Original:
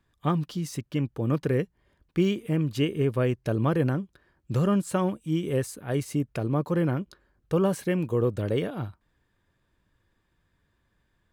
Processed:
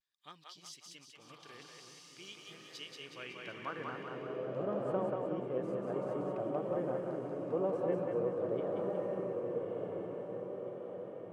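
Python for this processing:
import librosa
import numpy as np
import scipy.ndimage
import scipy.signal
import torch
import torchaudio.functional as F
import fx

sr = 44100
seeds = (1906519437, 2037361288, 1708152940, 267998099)

p1 = x + fx.echo_diffused(x, sr, ms=1204, feedback_pct=53, wet_db=-3, dry=0)
p2 = fx.filter_sweep_bandpass(p1, sr, from_hz=4600.0, to_hz=610.0, start_s=2.78, end_s=4.45, q=1.6)
p3 = fx.echo_split(p2, sr, split_hz=410.0, low_ms=307, high_ms=186, feedback_pct=52, wet_db=-3)
p4 = fx.vibrato(p3, sr, rate_hz=0.48, depth_cents=38.0)
y = p4 * 10.0 ** (-6.5 / 20.0)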